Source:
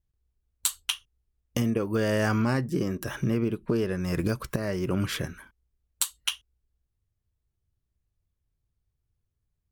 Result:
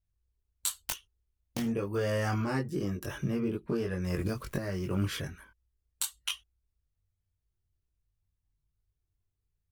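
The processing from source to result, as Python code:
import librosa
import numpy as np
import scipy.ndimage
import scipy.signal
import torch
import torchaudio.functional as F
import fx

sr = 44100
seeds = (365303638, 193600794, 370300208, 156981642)

y = fx.self_delay(x, sr, depth_ms=0.56, at=(0.84, 1.7))
y = fx.chorus_voices(y, sr, voices=4, hz=0.34, base_ms=21, depth_ms=1.5, mix_pct=45)
y = fx.quant_dither(y, sr, seeds[0], bits=10, dither='none', at=(4.08, 5.21))
y = y * librosa.db_to_amplitude(-2.0)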